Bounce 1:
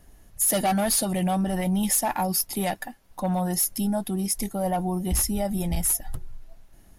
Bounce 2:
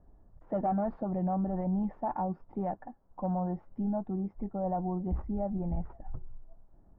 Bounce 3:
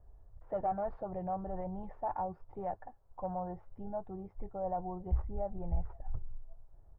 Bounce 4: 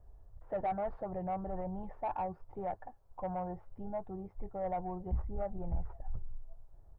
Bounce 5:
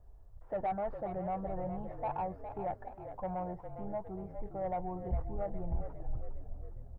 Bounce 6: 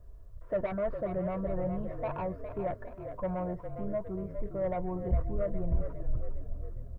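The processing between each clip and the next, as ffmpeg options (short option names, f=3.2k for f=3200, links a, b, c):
-af "lowpass=f=1.1k:w=0.5412,lowpass=f=1.1k:w=1.3066,volume=-6dB"
-af "firequalizer=gain_entry='entry(100,0);entry(220,-20);entry(420,-5)':delay=0.05:min_phase=1,volume=2.5dB"
-af "asoftclip=type=tanh:threshold=-27.5dB,volume=1dB"
-filter_complex "[0:a]asplit=7[a][b][c][d][e][f][g];[b]adelay=408,afreqshift=-42,volume=-9.5dB[h];[c]adelay=816,afreqshift=-84,volume=-14.9dB[i];[d]adelay=1224,afreqshift=-126,volume=-20.2dB[j];[e]adelay=1632,afreqshift=-168,volume=-25.6dB[k];[f]adelay=2040,afreqshift=-210,volume=-30.9dB[l];[g]adelay=2448,afreqshift=-252,volume=-36.3dB[m];[a][h][i][j][k][l][m]amix=inputs=7:normalize=0"
-af "asuperstop=centerf=810:order=4:qfactor=3.1,volume=6dB"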